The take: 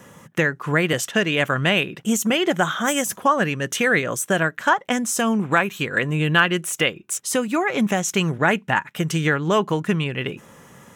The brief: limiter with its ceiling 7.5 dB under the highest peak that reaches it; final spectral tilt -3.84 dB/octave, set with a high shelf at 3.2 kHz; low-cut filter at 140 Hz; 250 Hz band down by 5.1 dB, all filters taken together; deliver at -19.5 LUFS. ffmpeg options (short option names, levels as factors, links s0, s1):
-af "highpass=140,equalizer=f=250:t=o:g=-6,highshelf=f=3200:g=-5,volume=1.88,alimiter=limit=0.473:level=0:latency=1"